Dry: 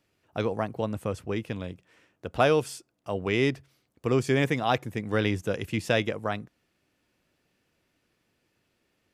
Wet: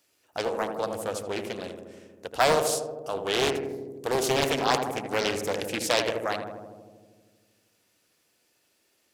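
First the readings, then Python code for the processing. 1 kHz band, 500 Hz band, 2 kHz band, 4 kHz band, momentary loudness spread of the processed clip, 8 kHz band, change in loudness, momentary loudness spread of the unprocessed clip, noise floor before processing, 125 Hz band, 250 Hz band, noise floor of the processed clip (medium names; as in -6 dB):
+3.5 dB, +1.0 dB, +0.5 dB, +6.5 dB, 15 LU, +11.5 dB, +0.5 dB, 14 LU, -75 dBFS, -9.0 dB, -4.5 dB, -70 dBFS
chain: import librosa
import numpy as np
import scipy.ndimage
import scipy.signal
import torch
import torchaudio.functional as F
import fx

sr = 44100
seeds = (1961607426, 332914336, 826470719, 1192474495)

y = fx.bass_treble(x, sr, bass_db=-13, treble_db=12)
y = fx.echo_filtered(y, sr, ms=79, feedback_pct=80, hz=1200.0, wet_db=-5.5)
y = fx.doppler_dist(y, sr, depth_ms=0.8)
y = F.gain(torch.from_numpy(y), 1.0).numpy()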